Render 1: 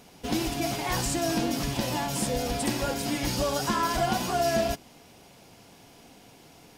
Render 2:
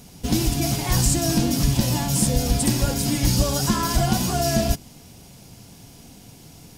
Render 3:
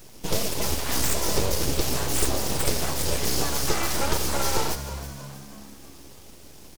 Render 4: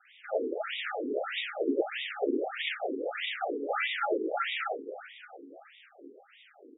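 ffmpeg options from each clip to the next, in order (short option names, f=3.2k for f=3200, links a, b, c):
-af "bass=f=250:g=14,treble=f=4k:g=10"
-filter_complex "[0:a]acrossover=split=130|1400[a][b][c];[a]acompressor=threshold=-34dB:ratio=6[d];[d][b][c]amix=inputs=3:normalize=0,aeval=exprs='abs(val(0))':c=same,asplit=6[e][f][g][h][i][j];[f]adelay=320,afreqshift=69,volume=-12.5dB[k];[g]adelay=640,afreqshift=138,volume=-18.9dB[l];[h]adelay=960,afreqshift=207,volume=-25.3dB[m];[i]adelay=1280,afreqshift=276,volume=-31.6dB[n];[j]adelay=1600,afreqshift=345,volume=-38dB[o];[e][k][l][m][n][o]amix=inputs=6:normalize=0"
-af "asuperstop=centerf=1000:order=20:qfactor=2.8,bandreject=f=74.96:t=h:w=4,bandreject=f=149.92:t=h:w=4,bandreject=f=224.88:t=h:w=4,bandreject=f=299.84:t=h:w=4,bandreject=f=374.8:t=h:w=4,bandreject=f=449.76:t=h:w=4,bandreject=f=524.72:t=h:w=4,bandreject=f=599.68:t=h:w=4,bandreject=f=674.64:t=h:w=4,bandreject=f=749.6:t=h:w=4,bandreject=f=824.56:t=h:w=4,bandreject=f=899.52:t=h:w=4,bandreject=f=974.48:t=h:w=4,bandreject=f=1.04944k:t=h:w=4,bandreject=f=1.1244k:t=h:w=4,bandreject=f=1.19936k:t=h:w=4,bandreject=f=1.27432k:t=h:w=4,bandreject=f=1.34928k:t=h:w=4,bandreject=f=1.42424k:t=h:w=4,bandreject=f=1.4992k:t=h:w=4,bandreject=f=1.57416k:t=h:w=4,bandreject=f=1.64912k:t=h:w=4,bandreject=f=1.72408k:t=h:w=4,bandreject=f=1.79904k:t=h:w=4,bandreject=f=1.874k:t=h:w=4,bandreject=f=1.94896k:t=h:w=4,bandreject=f=2.02392k:t=h:w=4,bandreject=f=2.09888k:t=h:w=4,afftfilt=real='re*between(b*sr/1024,330*pow(2700/330,0.5+0.5*sin(2*PI*1.6*pts/sr))/1.41,330*pow(2700/330,0.5+0.5*sin(2*PI*1.6*pts/sr))*1.41)':imag='im*between(b*sr/1024,330*pow(2700/330,0.5+0.5*sin(2*PI*1.6*pts/sr))/1.41,330*pow(2700/330,0.5+0.5*sin(2*PI*1.6*pts/sr))*1.41)':win_size=1024:overlap=0.75,volume=5dB"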